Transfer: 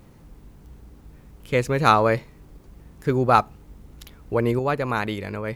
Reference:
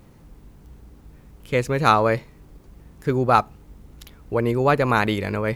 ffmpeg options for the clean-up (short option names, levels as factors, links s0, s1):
-af "asetnsamples=n=441:p=0,asendcmd='4.59 volume volume 5.5dB',volume=1"